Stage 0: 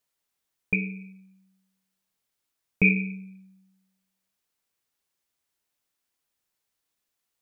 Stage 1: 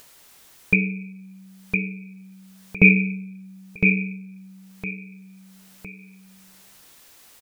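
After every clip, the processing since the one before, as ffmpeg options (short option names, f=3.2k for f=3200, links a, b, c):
-filter_complex "[0:a]asplit=2[a][b];[b]aecho=0:1:1010|2020|3030:0.562|0.118|0.0248[c];[a][c]amix=inputs=2:normalize=0,acompressor=mode=upward:threshold=-39dB:ratio=2.5,volume=7dB"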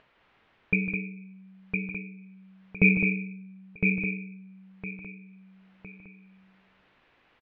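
-af "lowpass=f=2.7k:w=0.5412,lowpass=f=2.7k:w=1.3066,aecho=1:1:154.5|209.9:0.316|0.447,volume=-6dB"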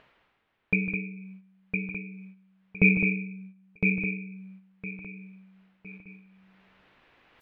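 -af "areverse,acompressor=mode=upward:threshold=-39dB:ratio=2.5,areverse,agate=range=-10dB:threshold=-45dB:ratio=16:detection=peak"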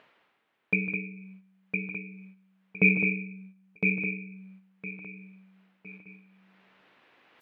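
-af "highpass=190"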